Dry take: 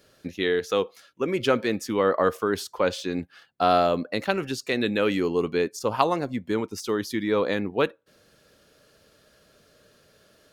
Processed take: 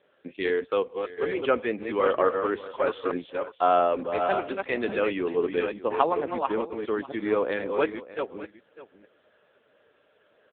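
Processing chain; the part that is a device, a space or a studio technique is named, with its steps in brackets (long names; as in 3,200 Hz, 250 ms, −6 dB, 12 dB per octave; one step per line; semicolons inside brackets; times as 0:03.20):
delay that plays each chunk backwards 445 ms, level −5 dB
satellite phone (band-pass filter 320–3,200 Hz; single-tap delay 601 ms −16.5 dB; AMR narrowband 6.7 kbit/s 8,000 Hz)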